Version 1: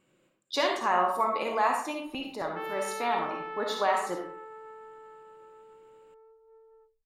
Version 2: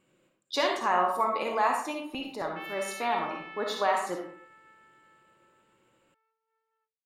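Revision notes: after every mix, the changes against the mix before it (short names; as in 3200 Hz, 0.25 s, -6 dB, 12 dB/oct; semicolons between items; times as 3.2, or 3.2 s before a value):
background: add resonant high-pass 2300 Hz, resonance Q 1.7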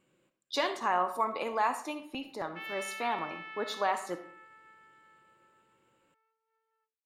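speech: send -10.0 dB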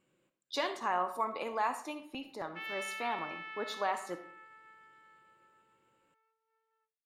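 speech -3.5 dB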